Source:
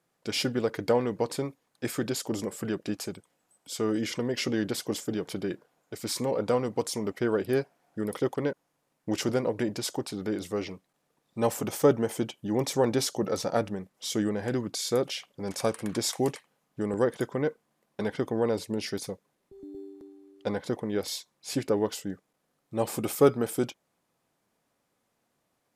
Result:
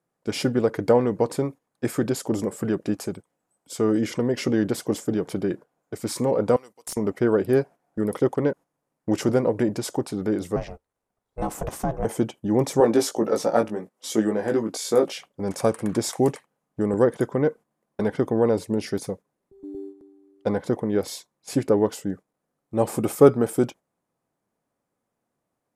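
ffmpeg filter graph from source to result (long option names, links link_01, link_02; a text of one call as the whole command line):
ffmpeg -i in.wav -filter_complex "[0:a]asettb=1/sr,asplit=3[link_01][link_02][link_03];[link_01]atrim=end=6.564[link_04];[link_02]atrim=start=6.56:end=6.97,asetpts=PTS-STARTPTS,afade=type=in:duration=0.004:curve=qsin,afade=type=out:start_time=0.406:duration=0.004:curve=qsin,aderivative,aeval=exprs='(mod(15.8*val(0)+1,2)-1)/15.8':channel_layout=same[link_05];[link_03]atrim=start=6.966[link_06];[link_04][link_05]acrossfade=duration=0.004:curve1=hsin:curve2=qsin[link_07];[link_07][link_06]acrossfade=duration=0.004:curve1=qsin:curve2=hsin,asettb=1/sr,asplit=3[link_08][link_09][link_10];[link_08]atrim=end=10.564[link_11];[link_09]atrim=start=10.56:end=12.05,asetpts=PTS-STARTPTS,afade=type=in:duration=0.004:curve=qsin,afade=type=out:start_time=1.486:duration=0.004:curve=qsin,highpass=frequency=170:poles=1,acompressor=threshold=-24dB:ratio=5:attack=3.2:release=140:knee=1:detection=peak,aeval=exprs='val(0)*sin(2*PI*260*n/s)':channel_layout=same[link_12];[link_10]atrim=start=12.046[link_13];[link_11][link_12]acrossfade=duration=0.004:curve1=hsin:curve2=qsin[link_14];[link_14][link_13]acrossfade=duration=0.004:curve1=qsin:curve2=hsin,asettb=1/sr,asplit=3[link_15][link_16][link_17];[link_15]atrim=end=12.804[link_18];[link_16]atrim=start=12.8:end=15.18,asetpts=PTS-STARTPTS,afade=type=in:duration=0.004:curve=qsin,afade=type=out:start_time=2.376:duration=0.004:curve=qsin,highpass=230,asplit=2[link_19][link_20];[link_20]adelay=18,volume=-4dB[link_21];[link_19][link_21]amix=inputs=2:normalize=0,atrim=end_sample=104958[link_22];[link_17]atrim=start=15.176[link_23];[link_18][link_22]acrossfade=duration=0.004:curve1=hsin:curve2=qsin[link_24];[link_24][link_23]acrossfade=duration=0.004:curve1=qsin:curve2=hsin,agate=range=-9dB:threshold=-44dB:ratio=16:detection=peak,lowpass=11000,equalizer=frequency=3800:width_type=o:width=2.2:gain=-10,volume=7dB" out.wav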